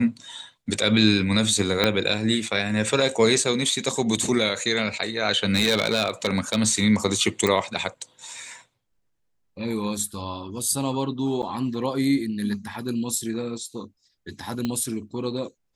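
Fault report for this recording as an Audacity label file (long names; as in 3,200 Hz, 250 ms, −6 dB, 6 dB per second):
1.840000	1.840000	click −5 dBFS
5.460000	6.560000	clipping −15 dBFS
7.470000	7.470000	click
11.420000	11.430000	drop-out 7.8 ms
14.650000	14.650000	click −14 dBFS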